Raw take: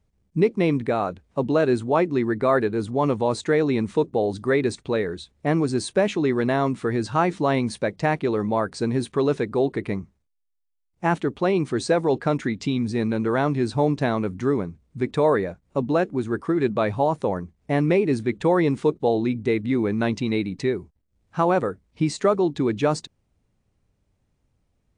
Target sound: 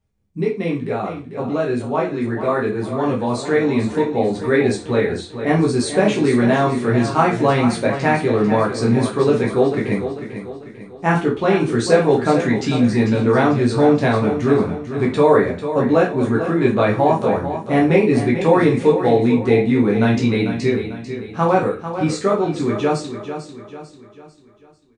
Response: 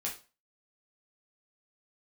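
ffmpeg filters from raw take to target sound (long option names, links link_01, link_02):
-filter_complex "[0:a]dynaudnorm=framelen=540:gausssize=13:maxgain=13.5dB,aecho=1:1:445|890|1335|1780|2225:0.316|0.139|0.0612|0.0269|0.0119[link_01];[1:a]atrim=start_sample=2205[link_02];[link_01][link_02]afir=irnorm=-1:irlink=0,volume=-2.5dB"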